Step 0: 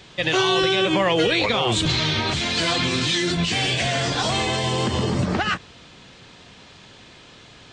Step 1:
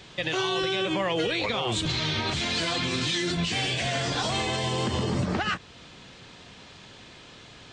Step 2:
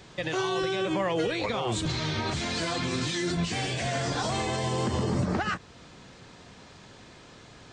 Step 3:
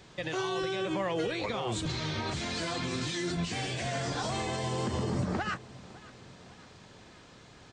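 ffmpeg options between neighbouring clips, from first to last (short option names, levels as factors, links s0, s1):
-af "alimiter=limit=0.15:level=0:latency=1:release=285,volume=0.841"
-af "equalizer=f=3100:t=o:w=1.1:g=-7.5"
-af "aecho=1:1:556|1112|1668|2224:0.0944|0.0538|0.0307|0.0175,volume=0.631"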